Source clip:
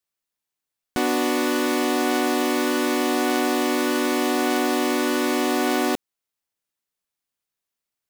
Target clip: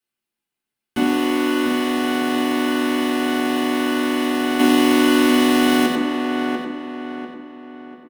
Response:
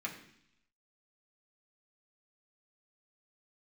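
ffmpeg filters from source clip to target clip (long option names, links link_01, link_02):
-filter_complex "[0:a]asoftclip=type=tanh:threshold=-18.5dB,asettb=1/sr,asplit=3[link_01][link_02][link_03];[link_01]atrim=end=4.594[link_04];[link_02]atrim=start=4.59:end=5.86,asetpts=PTS-STARTPTS,afade=type=in:duration=0.004:curve=qsin,afade=type=out:start_time=1.266:duration=0.004:curve=qsin,acontrast=88[link_05];[link_03]atrim=start=5.856[link_06];[link_04][link_05]acrossfade=duration=0.004:curve1=hsin:curve2=qsin[link_07];[link_07][link_06]acrossfade=duration=0.004:curve1=qsin:curve2=hsin,lowshelf=frequency=350:gain=6.5,asplit=2[link_08][link_09];[link_09]adelay=693,lowpass=frequency=2800:poles=1,volume=-8dB,asplit=2[link_10][link_11];[link_11]adelay=693,lowpass=frequency=2800:poles=1,volume=0.41,asplit=2[link_12][link_13];[link_13]adelay=693,lowpass=frequency=2800:poles=1,volume=0.41,asplit=2[link_14][link_15];[link_15]adelay=693,lowpass=frequency=2800:poles=1,volume=0.41,asplit=2[link_16][link_17];[link_17]adelay=693,lowpass=frequency=2800:poles=1,volume=0.41[link_18];[link_08][link_10][link_12][link_14][link_16][link_18]amix=inputs=6:normalize=0,acrossover=split=260|3000[link_19][link_20][link_21];[link_20]acompressor=threshold=-18dB:ratio=6[link_22];[link_19][link_22][link_21]amix=inputs=3:normalize=0[link_23];[1:a]atrim=start_sample=2205,asetrate=52920,aresample=44100[link_24];[link_23][link_24]afir=irnorm=-1:irlink=0,volume=3.5dB"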